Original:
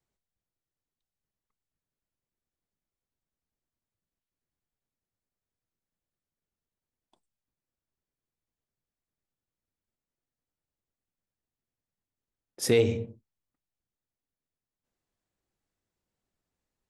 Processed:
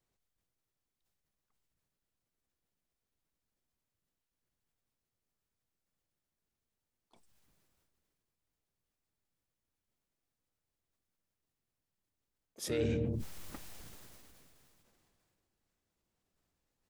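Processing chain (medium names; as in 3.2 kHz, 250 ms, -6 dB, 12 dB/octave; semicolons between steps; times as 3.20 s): reverse; compression 16:1, threshold -31 dBFS, peak gain reduction 14 dB; reverse; harmony voices -7 st -6 dB, +4 st -13 dB; decay stretcher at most 21 dB/s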